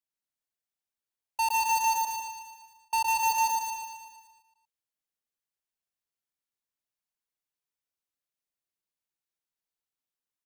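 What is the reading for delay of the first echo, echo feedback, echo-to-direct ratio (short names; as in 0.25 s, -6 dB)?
0.114 s, no steady repeat, -1.5 dB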